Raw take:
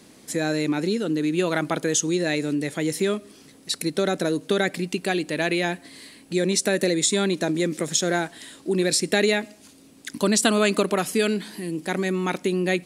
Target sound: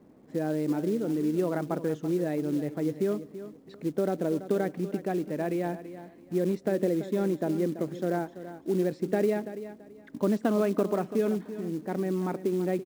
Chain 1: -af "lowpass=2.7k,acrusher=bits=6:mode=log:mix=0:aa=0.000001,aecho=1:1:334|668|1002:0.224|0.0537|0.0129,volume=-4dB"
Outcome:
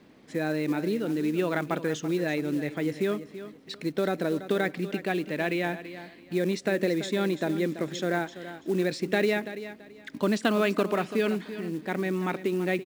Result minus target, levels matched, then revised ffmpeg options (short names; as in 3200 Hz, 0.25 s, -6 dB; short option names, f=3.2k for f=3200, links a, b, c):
2000 Hz band +10.5 dB
-af "lowpass=880,acrusher=bits=6:mode=log:mix=0:aa=0.000001,aecho=1:1:334|668|1002:0.224|0.0537|0.0129,volume=-4dB"